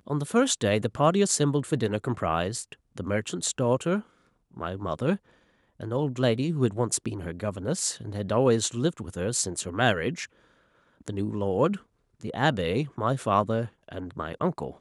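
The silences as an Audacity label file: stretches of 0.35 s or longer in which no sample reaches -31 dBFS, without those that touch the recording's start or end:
4.000000	4.570000	silence
5.160000	5.810000	silence
10.240000	11.080000	silence
11.760000	12.240000	silence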